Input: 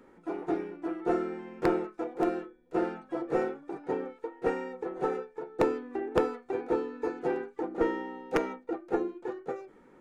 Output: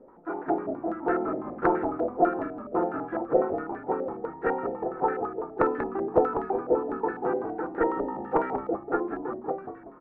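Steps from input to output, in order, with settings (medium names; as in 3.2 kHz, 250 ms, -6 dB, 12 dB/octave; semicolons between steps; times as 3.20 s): frequency-shifting echo 188 ms, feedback 39%, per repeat -56 Hz, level -7.5 dB; step-sequenced low-pass 12 Hz 620–1600 Hz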